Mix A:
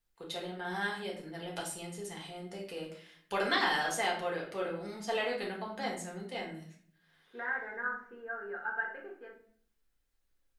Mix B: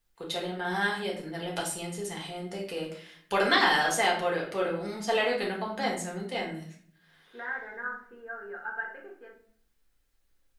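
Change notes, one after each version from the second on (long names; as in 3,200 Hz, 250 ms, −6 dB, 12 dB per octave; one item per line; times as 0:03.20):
first voice +6.5 dB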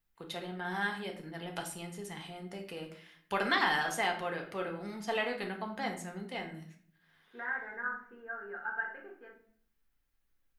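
first voice: send −6.5 dB
master: add octave-band graphic EQ 500/4,000/8,000 Hz −5/−4/−6 dB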